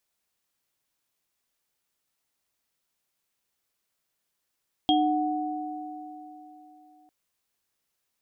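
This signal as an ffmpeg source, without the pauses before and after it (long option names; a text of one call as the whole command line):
ffmpeg -f lavfi -i "aevalsrc='0.0891*pow(10,-3*t/3.35)*sin(2*PI*304*t)+0.0891*pow(10,-3*t/3.62)*sin(2*PI*740*t)+0.0944*pow(10,-3*t/0.28)*sin(2*PI*3250*t)':duration=2.2:sample_rate=44100" out.wav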